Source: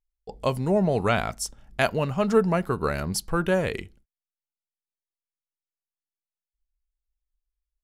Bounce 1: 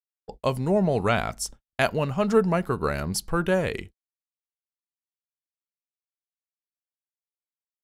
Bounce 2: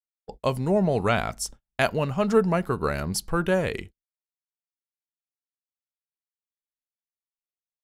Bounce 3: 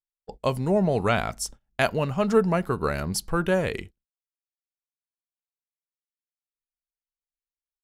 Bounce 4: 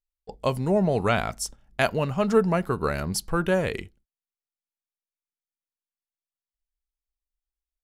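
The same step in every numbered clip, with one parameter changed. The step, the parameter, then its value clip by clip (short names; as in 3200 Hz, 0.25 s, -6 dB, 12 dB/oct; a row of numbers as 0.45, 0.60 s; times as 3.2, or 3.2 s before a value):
gate, range: -59, -40, -25, -8 dB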